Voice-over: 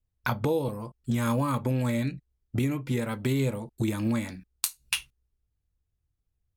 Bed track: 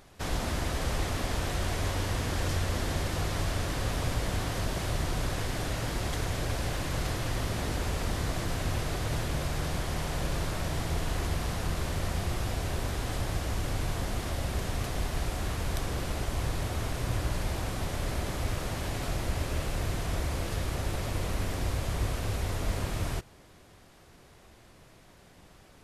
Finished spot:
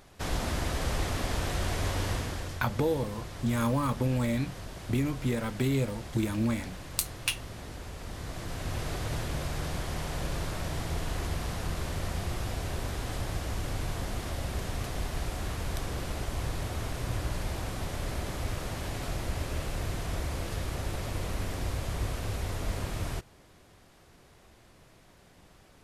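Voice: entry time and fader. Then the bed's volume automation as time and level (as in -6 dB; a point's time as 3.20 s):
2.35 s, -1.5 dB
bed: 2.12 s 0 dB
2.61 s -10.5 dB
7.96 s -10.5 dB
8.87 s -2 dB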